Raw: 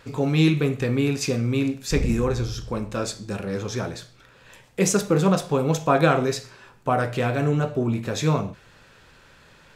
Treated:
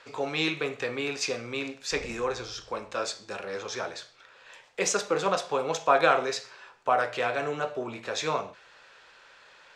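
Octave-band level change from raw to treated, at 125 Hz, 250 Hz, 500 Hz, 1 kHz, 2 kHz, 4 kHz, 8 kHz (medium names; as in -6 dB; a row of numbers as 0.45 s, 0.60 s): -21.0 dB, -14.5 dB, -4.5 dB, -0.5 dB, 0.0 dB, -0.5 dB, -3.5 dB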